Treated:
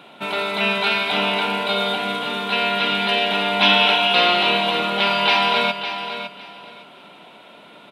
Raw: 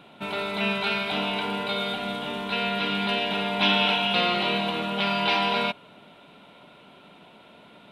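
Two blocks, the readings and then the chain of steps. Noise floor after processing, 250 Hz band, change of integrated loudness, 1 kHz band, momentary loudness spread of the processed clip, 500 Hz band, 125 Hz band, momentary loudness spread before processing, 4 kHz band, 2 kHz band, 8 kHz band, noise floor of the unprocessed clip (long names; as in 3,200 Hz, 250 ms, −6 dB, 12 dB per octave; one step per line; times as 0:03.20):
−46 dBFS, +2.0 dB, +6.5 dB, +7.0 dB, 11 LU, +6.0 dB, +1.0 dB, 9 LU, +7.5 dB, +7.5 dB, +7.5 dB, −52 dBFS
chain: high-pass filter 340 Hz 6 dB per octave
on a send: repeating echo 558 ms, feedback 21%, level −10 dB
on the sum: level +7 dB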